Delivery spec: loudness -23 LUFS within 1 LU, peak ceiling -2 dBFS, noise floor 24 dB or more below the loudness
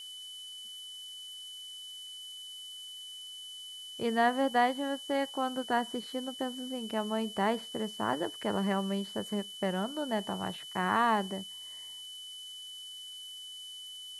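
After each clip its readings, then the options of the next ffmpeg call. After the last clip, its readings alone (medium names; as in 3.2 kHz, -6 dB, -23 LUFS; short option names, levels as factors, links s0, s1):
steady tone 3 kHz; tone level -43 dBFS; noise floor -46 dBFS; noise floor target -59 dBFS; loudness -34.5 LUFS; peak level -15.0 dBFS; loudness target -23.0 LUFS
-> -af "bandreject=f=3000:w=30"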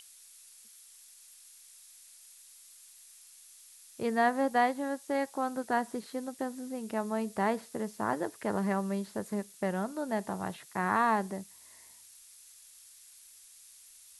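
steady tone not found; noise floor -56 dBFS; noise floor target -57 dBFS
-> -af "afftdn=nr=6:nf=-56"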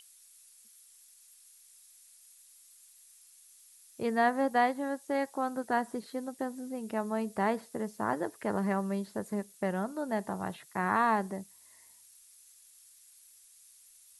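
noise floor -59 dBFS; loudness -32.5 LUFS; peak level -15.0 dBFS; loudness target -23.0 LUFS
-> -af "volume=2.99"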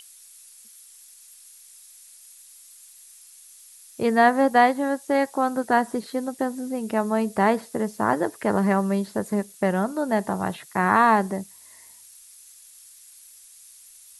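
loudness -23.0 LUFS; peak level -5.5 dBFS; noise floor -50 dBFS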